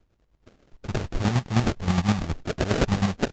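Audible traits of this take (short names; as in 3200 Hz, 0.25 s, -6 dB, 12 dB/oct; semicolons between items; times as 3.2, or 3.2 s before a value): phasing stages 4, 2.6 Hz, lowest notch 350–2600 Hz; aliases and images of a low sample rate 1000 Hz, jitter 20%; chopped level 9.6 Hz, depth 60%, duty 35%; Vorbis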